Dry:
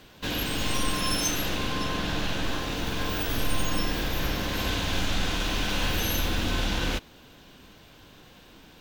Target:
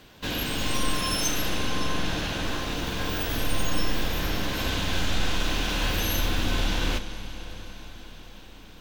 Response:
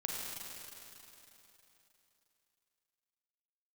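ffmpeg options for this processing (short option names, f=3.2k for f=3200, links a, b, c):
-filter_complex "[0:a]asplit=2[a][b];[1:a]atrim=start_sample=2205,asetrate=22932,aresample=44100,adelay=32[c];[b][c]afir=irnorm=-1:irlink=0,volume=-17dB[d];[a][d]amix=inputs=2:normalize=0"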